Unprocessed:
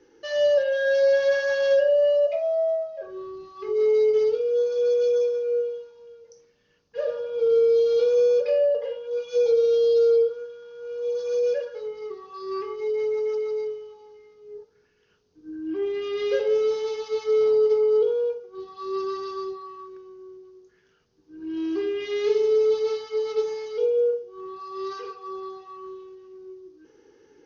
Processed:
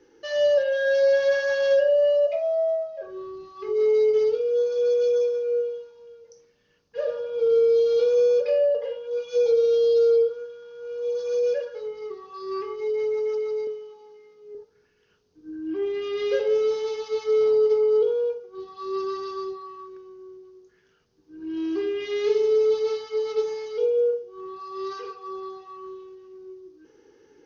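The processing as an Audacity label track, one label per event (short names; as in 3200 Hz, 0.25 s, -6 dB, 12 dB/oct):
13.670000	14.550000	HPF 130 Hz 24 dB/oct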